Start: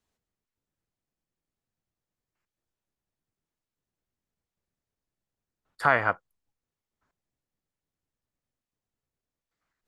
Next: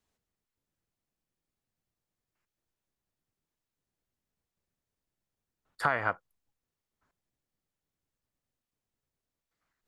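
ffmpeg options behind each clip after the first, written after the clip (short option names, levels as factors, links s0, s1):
-af "acompressor=threshold=0.0708:ratio=6"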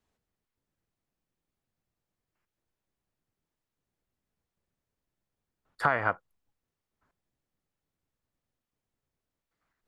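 -af "highshelf=f=3400:g=-7.5,volume=1.41"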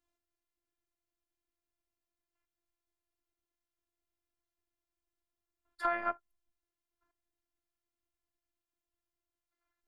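-af "afftfilt=real='hypot(re,im)*cos(PI*b)':imag='0':win_size=512:overlap=0.75,volume=0.708"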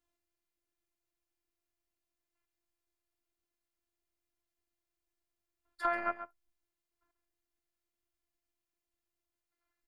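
-af "aecho=1:1:136:0.266"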